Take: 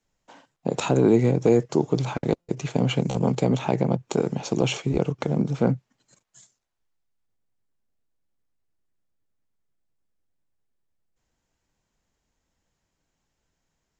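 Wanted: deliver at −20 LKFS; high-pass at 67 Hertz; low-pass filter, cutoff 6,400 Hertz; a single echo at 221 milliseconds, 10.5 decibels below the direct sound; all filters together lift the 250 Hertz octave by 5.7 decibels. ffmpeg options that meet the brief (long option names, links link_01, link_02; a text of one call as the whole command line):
ffmpeg -i in.wav -af "highpass=67,lowpass=6400,equalizer=frequency=250:width_type=o:gain=7.5,aecho=1:1:221:0.299" out.wav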